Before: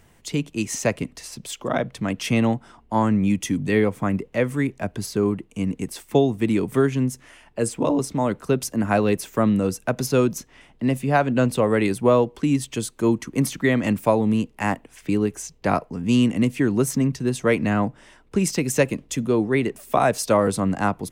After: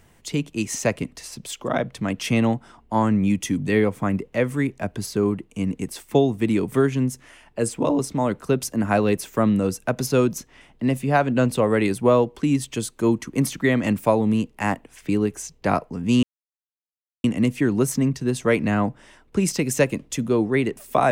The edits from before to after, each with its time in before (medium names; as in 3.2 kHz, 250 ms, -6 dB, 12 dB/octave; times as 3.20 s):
16.23 s: insert silence 1.01 s